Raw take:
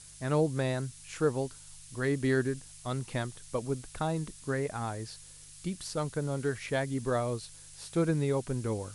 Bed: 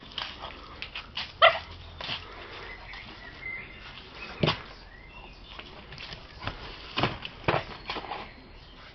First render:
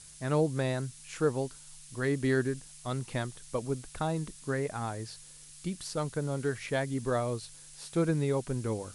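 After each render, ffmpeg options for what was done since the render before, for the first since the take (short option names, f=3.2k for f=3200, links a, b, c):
-af "bandreject=f=50:t=h:w=4,bandreject=f=100:t=h:w=4"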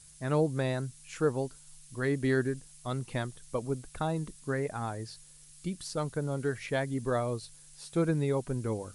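-af "afftdn=nr=6:nf=-51"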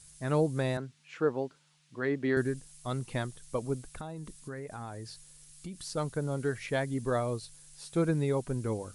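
-filter_complex "[0:a]asettb=1/sr,asplit=3[a][b][c];[a]atrim=end=0.774[d];[b]atrim=start=0.77:end=2.37,asetpts=PTS-STARTPTS,afade=t=in:d=0.004:c=qsin,afade=t=out:st=1.596:d=0.004:c=qsin,highpass=190,lowpass=3.3k[e];[c]atrim=start=2.366[f];[d][e]acrossfade=d=0.004:c1=hsin:c2=qsin[g];[g][f]acrossfade=d=0.004:c1=qsin:c2=hsin,asettb=1/sr,asplit=3[h][i][j];[h]atrim=end=3.894[k];[i]atrim=start=3.89:end=5.87,asetpts=PTS-STARTPTS,afade=t=in:d=0.004:c=qsin,afade=t=out:st=1.976:d=0.004:c=qsin,acompressor=threshold=-38dB:ratio=4:attack=3.2:release=140:knee=1:detection=peak[l];[j]atrim=start=5.866[m];[k][l]acrossfade=d=0.004:c1=hsin:c2=qsin[n];[n][m]acrossfade=d=0.004:c1=qsin:c2=hsin"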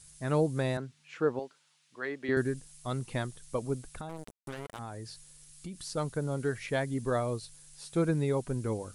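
-filter_complex "[0:a]asettb=1/sr,asplit=3[a][b][c];[a]atrim=end=1.394[d];[b]atrim=start=1.39:end=2.29,asetpts=PTS-STARTPTS,afade=t=in:d=0.004:c=qsin,afade=t=out:st=0.896:d=0.004:c=qsin,highpass=f=750:p=1[e];[c]atrim=start=2.286[f];[d][e]acrossfade=d=0.004:c1=hsin:c2=qsin[g];[g][f]acrossfade=d=0.004:c1=qsin:c2=hsin,asettb=1/sr,asplit=3[h][i][j];[h]atrim=end=4.094[k];[i]atrim=start=4.09:end=4.79,asetpts=PTS-STARTPTS,afade=t=in:d=0.004:c=qsin,afade=t=out:st=0.696:d=0.004:c=qsin,acrusher=bits=5:mix=0:aa=0.5[l];[j]atrim=start=4.786[m];[k][l]acrossfade=d=0.004:c1=hsin:c2=qsin[n];[n][m]acrossfade=d=0.004:c1=qsin:c2=hsin"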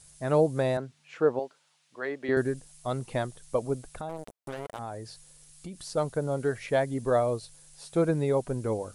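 -af "equalizer=f=630:t=o:w=1.2:g=8"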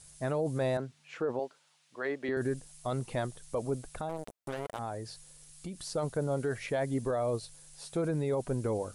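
-af "alimiter=limit=-23.5dB:level=0:latency=1:release=15"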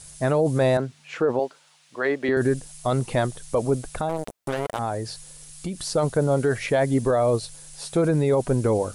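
-af "volume=10.5dB"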